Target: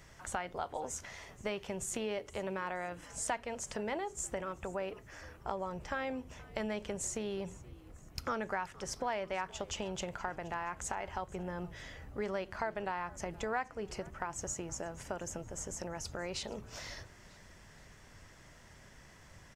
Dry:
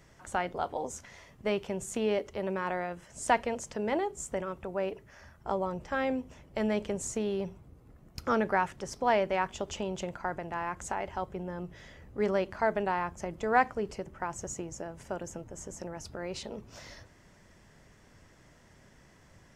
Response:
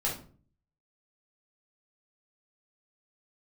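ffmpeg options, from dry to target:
-filter_complex "[0:a]equalizer=f=280:w=0.48:g=-6,acompressor=threshold=0.01:ratio=3,asplit=4[s0][s1][s2][s3];[s1]adelay=473,afreqshift=-74,volume=0.0891[s4];[s2]adelay=946,afreqshift=-148,volume=0.0412[s5];[s3]adelay=1419,afreqshift=-222,volume=0.0188[s6];[s0][s4][s5][s6]amix=inputs=4:normalize=0,volume=1.58"

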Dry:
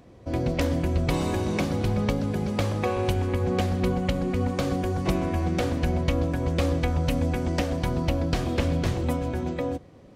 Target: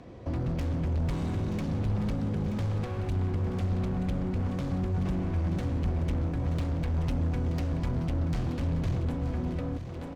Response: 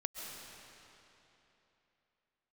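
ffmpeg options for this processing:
-filter_complex "[0:a]adynamicsmooth=sensitivity=6:basefreq=6300,volume=26.6,asoftclip=hard,volume=0.0376,aecho=1:1:928|1856|2784|3712:0.282|0.11|0.0429|0.0167,acrossover=split=220[s0][s1];[s1]acompressor=threshold=0.00708:ratio=6[s2];[s0][s2]amix=inputs=2:normalize=0,volume=1.58"

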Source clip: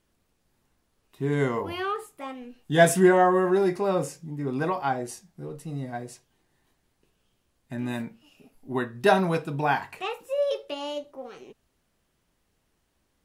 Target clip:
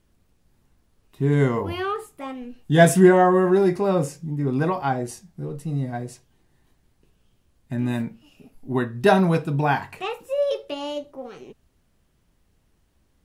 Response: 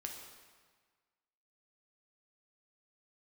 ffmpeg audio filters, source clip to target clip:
-af "lowshelf=f=220:g=10,volume=1.19"

